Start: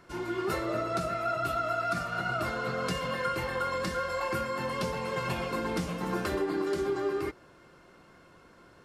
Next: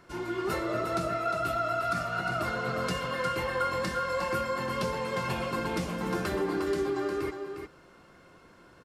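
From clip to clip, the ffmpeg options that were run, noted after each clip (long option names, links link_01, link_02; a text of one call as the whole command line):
ffmpeg -i in.wav -af "aecho=1:1:356:0.422" out.wav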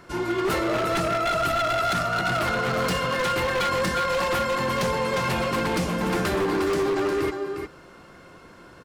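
ffmpeg -i in.wav -af "aeval=exprs='0.0473*(abs(mod(val(0)/0.0473+3,4)-2)-1)':channel_layout=same,volume=8dB" out.wav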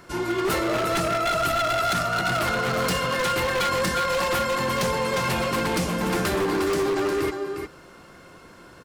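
ffmpeg -i in.wav -af "highshelf=frequency=5400:gain=6" out.wav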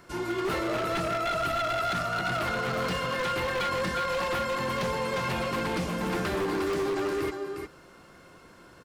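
ffmpeg -i in.wav -filter_complex "[0:a]acrossover=split=4400[link_01][link_02];[link_02]acompressor=threshold=-40dB:ratio=4:attack=1:release=60[link_03];[link_01][link_03]amix=inputs=2:normalize=0,volume=-5dB" out.wav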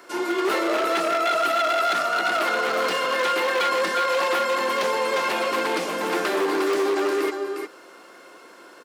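ffmpeg -i in.wav -af "highpass=frequency=300:width=0.5412,highpass=frequency=300:width=1.3066,volume=7dB" out.wav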